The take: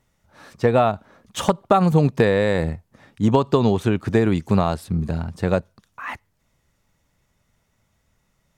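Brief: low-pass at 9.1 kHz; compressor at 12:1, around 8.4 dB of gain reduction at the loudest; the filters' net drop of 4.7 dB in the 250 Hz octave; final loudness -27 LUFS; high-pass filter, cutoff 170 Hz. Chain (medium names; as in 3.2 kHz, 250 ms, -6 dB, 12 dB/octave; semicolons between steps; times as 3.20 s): high-pass 170 Hz; low-pass 9.1 kHz; peaking EQ 250 Hz -4.5 dB; compression 12:1, threshold -21 dBFS; trim +2 dB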